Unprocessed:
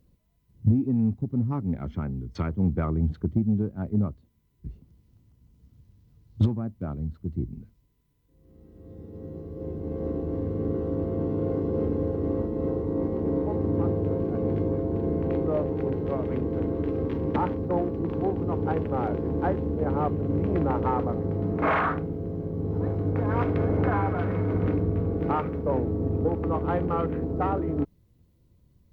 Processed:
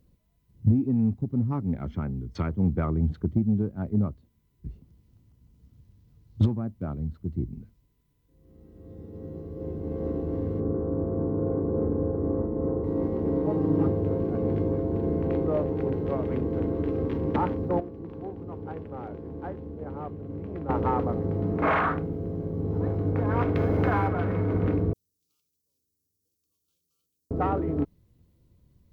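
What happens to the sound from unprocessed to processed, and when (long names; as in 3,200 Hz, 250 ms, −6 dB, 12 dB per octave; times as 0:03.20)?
0:10.60–0:12.84: low-pass filter 1,500 Hz 24 dB per octave
0:13.44–0:13.88: comb filter 6.4 ms, depth 77%
0:17.80–0:20.69: clip gain −10.5 dB
0:23.55–0:24.08: high-shelf EQ 2,900 Hz +9.5 dB
0:24.93–0:27.31: inverse Chebyshev high-pass filter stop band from 2,000 Hz, stop band 60 dB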